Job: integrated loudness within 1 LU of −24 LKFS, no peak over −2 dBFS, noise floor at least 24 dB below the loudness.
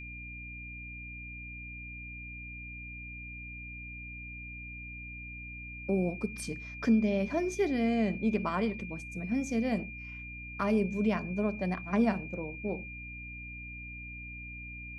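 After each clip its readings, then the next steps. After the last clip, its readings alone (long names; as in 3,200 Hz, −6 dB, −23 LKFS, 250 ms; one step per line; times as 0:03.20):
mains hum 60 Hz; hum harmonics up to 300 Hz; level of the hum −44 dBFS; interfering tone 2,400 Hz; level of the tone −43 dBFS; integrated loudness −34.5 LKFS; sample peak −16.5 dBFS; target loudness −24.0 LKFS
→ mains-hum notches 60/120/180/240/300 Hz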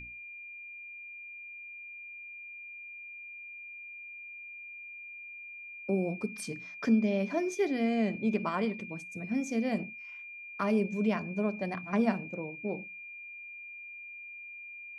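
mains hum none found; interfering tone 2,400 Hz; level of the tone −43 dBFS
→ notch filter 2,400 Hz, Q 30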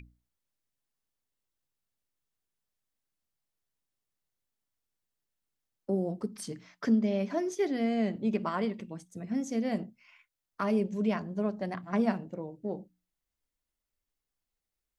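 interfering tone none found; integrated loudness −32.0 LKFS; sample peak −16.0 dBFS; target loudness −24.0 LKFS
→ level +8 dB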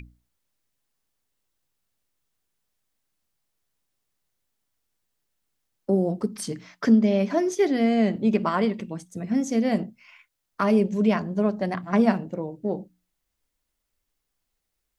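integrated loudness −24.0 LKFS; sample peak −8.0 dBFS; background noise floor −80 dBFS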